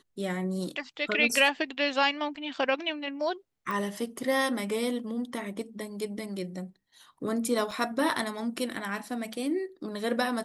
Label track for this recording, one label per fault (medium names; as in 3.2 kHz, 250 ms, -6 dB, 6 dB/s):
3.710000	3.710000	pop
7.710000	7.710000	dropout 3.7 ms